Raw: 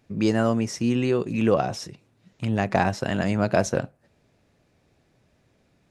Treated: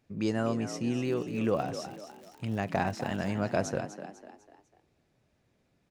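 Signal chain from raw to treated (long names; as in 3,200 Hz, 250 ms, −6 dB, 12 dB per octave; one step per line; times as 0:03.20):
0:01.02–0:03.32: surface crackle 79 per second −33 dBFS
echo with shifted repeats 249 ms, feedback 41%, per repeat +52 Hz, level −11 dB
level −8 dB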